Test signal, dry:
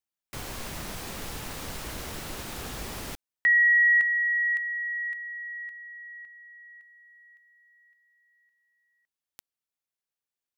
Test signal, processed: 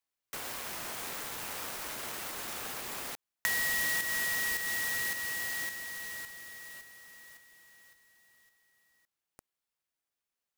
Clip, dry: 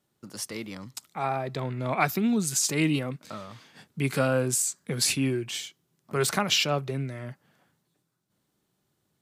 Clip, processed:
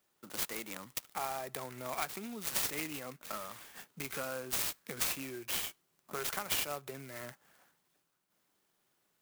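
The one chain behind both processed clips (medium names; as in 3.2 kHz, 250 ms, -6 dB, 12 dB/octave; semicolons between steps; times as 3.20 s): compression 5:1, threshold -34 dBFS; high-pass 1 kHz 6 dB/octave; sampling jitter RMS 0.064 ms; trim +3.5 dB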